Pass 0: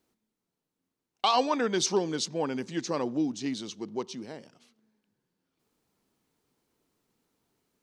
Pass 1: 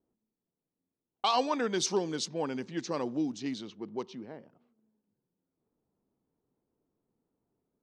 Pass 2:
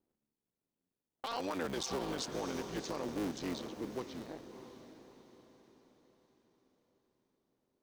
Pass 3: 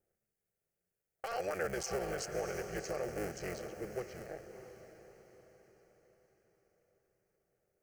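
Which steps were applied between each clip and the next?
low-pass that shuts in the quiet parts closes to 740 Hz, open at −25.5 dBFS; level −3 dB
sub-harmonics by changed cycles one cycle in 3, muted; feedback delay with all-pass diffusion 647 ms, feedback 42%, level −12 dB; brickwall limiter −26 dBFS, peak gain reduction 11 dB; level −1.5 dB
phaser with its sweep stopped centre 990 Hz, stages 6; level +4.5 dB

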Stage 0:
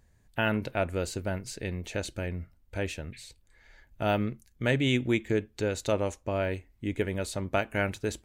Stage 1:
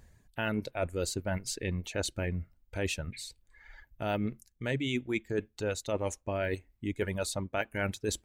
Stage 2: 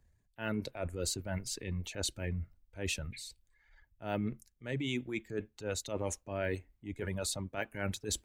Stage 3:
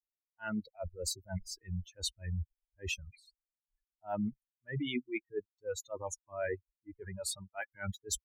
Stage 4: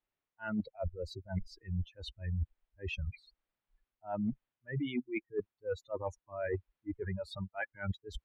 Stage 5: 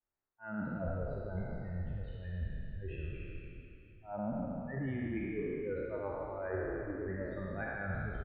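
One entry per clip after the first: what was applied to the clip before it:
reverb reduction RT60 1.6 s; reversed playback; downward compressor 6 to 1, threshold −35 dBFS, peak gain reduction 13 dB; reversed playback; level +6 dB
transient designer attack −7 dB, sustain +4 dB; multiband upward and downward expander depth 40%; level −2.5 dB
spectral dynamics exaggerated over time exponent 3; level +4.5 dB
reversed playback; downward compressor 6 to 1, threshold −46 dBFS, peak gain reduction 15 dB; reversed playback; high-frequency loss of the air 390 metres; level +13.5 dB
peak hold with a decay on every bin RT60 2.52 s; low-pass filter 1,900 Hz 24 dB per octave; echo with shifted repeats 148 ms, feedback 61%, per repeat −30 Hz, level −7.5 dB; level −6 dB

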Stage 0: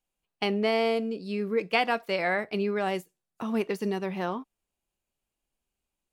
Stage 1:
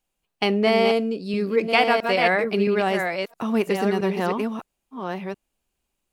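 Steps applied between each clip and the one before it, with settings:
delay that plays each chunk backwards 668 ms, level −5 dB
level +6 dB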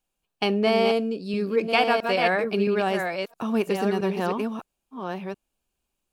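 notch filter 2,000 Hz, Q 8.7
level −2 dB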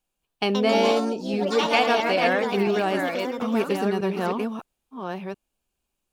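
delay with pitch and tempo change per echo 213 ms, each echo +4 semitones, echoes 3, each echo −6 dB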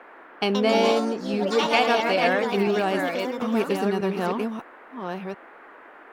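noise in a band 270–1,800 Hz −47 dBFS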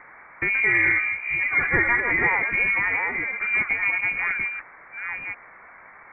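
voice inversion scrambler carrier 2,600 Hz

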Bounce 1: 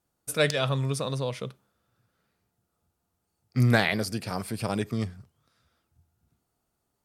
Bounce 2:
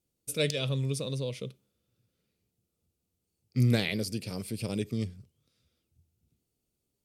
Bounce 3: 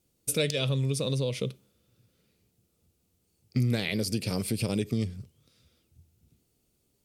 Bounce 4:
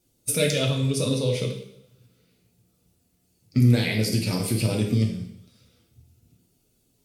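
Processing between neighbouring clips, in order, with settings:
flat-topped bell 1,100 Hz −13 dB; level −2.5 dB
downward compressor 4 to 1, threshold −34 dBFS, peak gain reduction 12 dB; level +9 dB
spectral magnitudes quantised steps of 15 dB; coupled-rooms reverb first 0.7 s, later 1.8 s, from −27 dB, DRR 0.5 dB; level +3 dB

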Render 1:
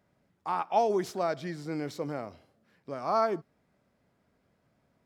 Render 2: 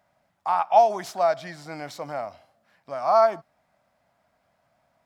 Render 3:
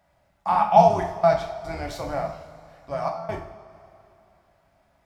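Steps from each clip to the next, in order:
low shelf with overshoot 530 Hz −7.5 dB, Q 3; level +4.5 dB
sub-octave generator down 2 octaves, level +2 dB; gate pattern "xxxxx.x.xx" 73 BPM −24 dB; convolution reverb, pre-delay 3 ms, DRR 0 dB

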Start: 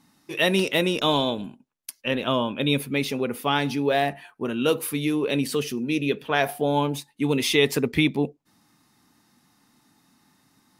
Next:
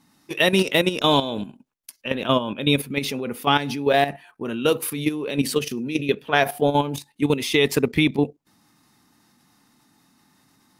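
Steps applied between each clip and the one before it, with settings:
output level in coarse steps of 11 dB
level +5.5 dB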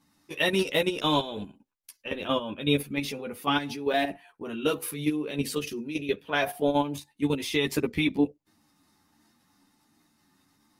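multi-voice chorus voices 6, 0.45 Hz, delay 12 ms, depth 2.1 ms
level −3.5 dB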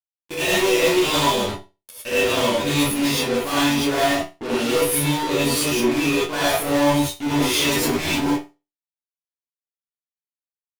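fuzz pedal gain 42 dB, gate −41 dBFS
resonators tuned to a chord E2 minor, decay 0.26 s
reverb whose tail is shaped and stops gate 130 ms rising, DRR −8 dB
level −1.5 dB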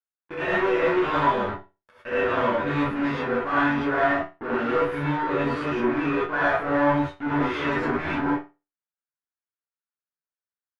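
low-pass with resonance 1,500 Hz, resonance Q 3.1
level −4.5 dB

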